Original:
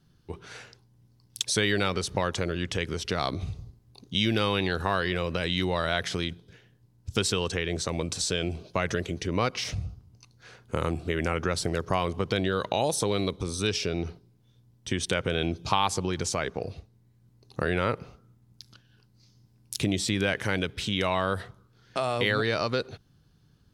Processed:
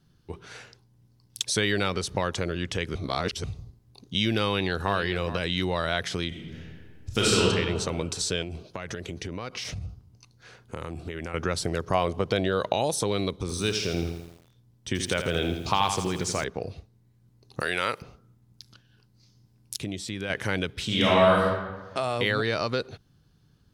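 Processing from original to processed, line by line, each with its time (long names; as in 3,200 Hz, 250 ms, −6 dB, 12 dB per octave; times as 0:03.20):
0:02.95–0:03.44: reverse
0:04.45–0:04.96: delay throw 420 ms, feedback 10%, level −12 dB
0:06.28–0:07.42: thrown reverb, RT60 1.7 s, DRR −5.5 dB
0:08.42–0:11.34: downward compressor, threshold −30 dBFS
0:11.94–0:12.73: parametric band 620 Hz +6 dB
0:13.37–0:16.44: feedback echo at a low word length 83 ms, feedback 55%, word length 8 bits, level −7.5 dB
0:17.60–0:18.02: spectral tilt +4 dB per octave
0:19.77–0:20.30: clip gain −7 dB
0:20.85–0:21.43: thrown reverb, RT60 1.3 s, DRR −5.5 dB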